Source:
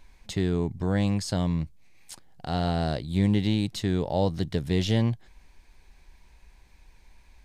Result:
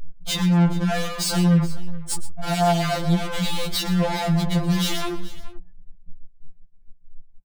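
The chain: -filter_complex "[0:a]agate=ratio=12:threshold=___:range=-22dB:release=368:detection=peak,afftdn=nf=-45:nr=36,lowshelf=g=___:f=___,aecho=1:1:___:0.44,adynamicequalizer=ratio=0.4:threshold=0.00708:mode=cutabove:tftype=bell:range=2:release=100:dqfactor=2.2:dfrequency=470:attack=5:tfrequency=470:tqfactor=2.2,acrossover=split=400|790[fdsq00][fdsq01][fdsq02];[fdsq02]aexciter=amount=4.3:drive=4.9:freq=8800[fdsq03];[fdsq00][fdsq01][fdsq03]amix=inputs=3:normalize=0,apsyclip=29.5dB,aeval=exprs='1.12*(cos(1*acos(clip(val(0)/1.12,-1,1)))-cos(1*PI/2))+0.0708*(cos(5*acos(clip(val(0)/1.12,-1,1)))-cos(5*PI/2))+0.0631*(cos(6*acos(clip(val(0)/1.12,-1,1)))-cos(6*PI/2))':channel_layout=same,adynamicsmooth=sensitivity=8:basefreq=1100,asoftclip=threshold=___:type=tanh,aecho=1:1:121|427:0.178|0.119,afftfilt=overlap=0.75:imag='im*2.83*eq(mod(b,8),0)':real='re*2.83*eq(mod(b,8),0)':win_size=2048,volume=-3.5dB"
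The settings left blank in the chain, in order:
-48dB, -4.5, 130, 1.3, -16.5dB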